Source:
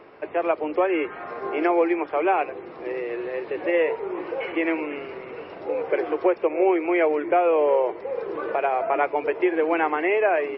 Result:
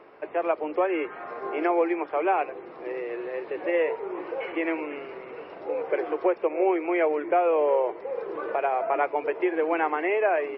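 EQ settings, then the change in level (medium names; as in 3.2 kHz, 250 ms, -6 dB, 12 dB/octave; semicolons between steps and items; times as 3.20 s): peaking EQ 100 Hz -4 dB 0.4 oct; bass shelf 320 Hz -8 dB; treble shelf 2 kHz -7 dB; 0.0 dB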